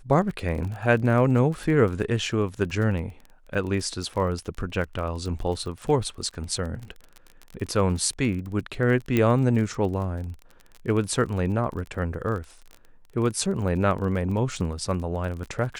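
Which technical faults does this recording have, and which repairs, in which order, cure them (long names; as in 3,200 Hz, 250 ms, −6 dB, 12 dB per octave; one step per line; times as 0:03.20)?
surface crackle 30 per second −32 dBFS
0:09.17: click −10 dBFS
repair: click removal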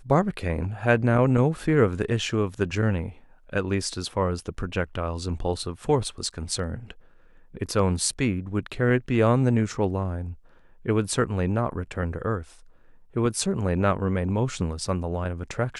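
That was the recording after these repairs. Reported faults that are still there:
none of them is left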